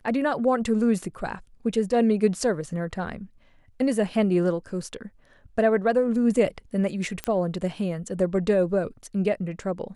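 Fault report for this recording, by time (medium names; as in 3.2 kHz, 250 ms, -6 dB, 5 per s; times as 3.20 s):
7.24 s: pop -13 dBFS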